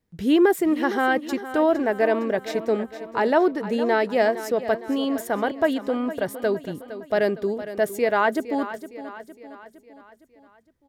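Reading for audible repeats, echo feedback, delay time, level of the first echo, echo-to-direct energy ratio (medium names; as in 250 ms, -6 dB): 4, 51%, 461 ms, -13.0 dB, -11.5 dB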